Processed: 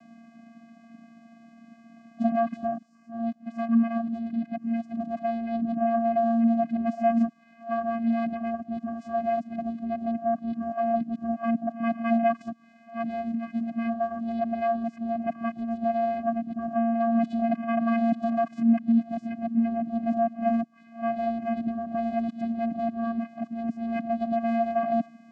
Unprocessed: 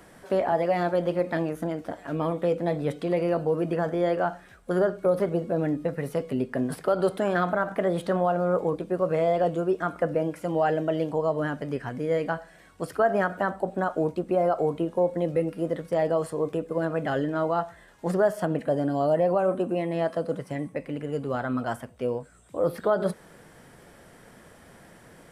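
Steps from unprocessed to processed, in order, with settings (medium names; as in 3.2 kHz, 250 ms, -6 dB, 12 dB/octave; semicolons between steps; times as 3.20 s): reverse the whole clip; vocoder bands 8, square 230 Hz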